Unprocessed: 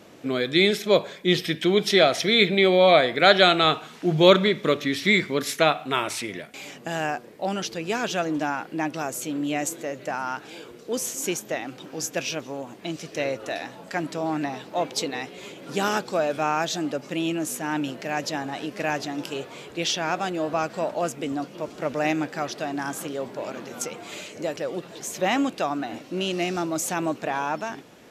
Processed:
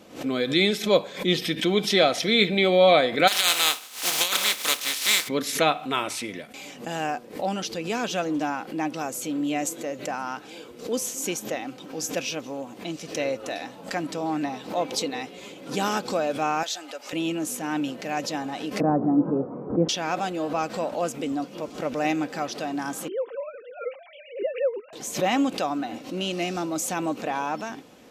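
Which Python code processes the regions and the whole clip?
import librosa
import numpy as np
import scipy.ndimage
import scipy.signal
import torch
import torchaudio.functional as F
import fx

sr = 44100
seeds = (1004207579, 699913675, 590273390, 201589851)

y = fx.spec_flatten(x, sr, power=0.33, at=(3.27, 5.27), fade=0.02)
y = fx.highpass(y, sr, hz=1300.0, slope=6, at=(3.27, 5.27), fade=0.02)
y = fx.over_compress(y, sr, threshold_db=-19.0, ratio=-0.5, at=(3.27, 5.27), fade=0.02)
y = fx.chain(y, sr, fx.highpass(hz=830.0, slope=12),
    fx.notch(hz=1100.0, q=8.9), at=(16.63, 17.13))
y = fx.chain(y, sr, fx.steep_lowpass(hz=1300.0, slope=36),
    fx.peak_eq(hz=190.0, db=13.0, octaves=2.7), at=(18.8, 19.89))
y = fx.chain(y, sr, fx.sine_speech(),
    fx.peak_eq(hz=250.0, db=9.0, octaves=0.7), at=(23.08, 24.93))
y = fx.peak_eq(y, sr, hz=1700.0, db=-3.5, octaves=0.61)
y = y + 0.31 * np.pad(y, (int(3.9 * sr / 1000.0), 0))[:len(y)]
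y = fx.pre_swell(y, sr, db_per_s=140.0)
y = y * 10.0 ** (-1.0 / 20.0)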